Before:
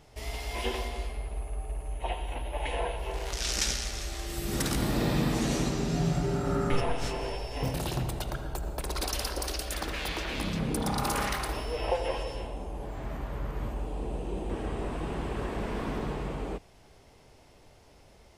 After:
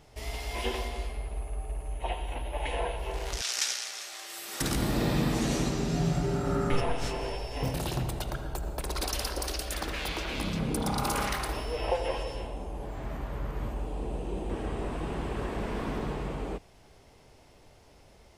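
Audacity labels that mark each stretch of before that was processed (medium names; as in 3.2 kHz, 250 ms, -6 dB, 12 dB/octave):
3.410000	4.610000	high-pass 840 Hz
10.050000	11.300000	band-stop 1.8 kHz, Q 14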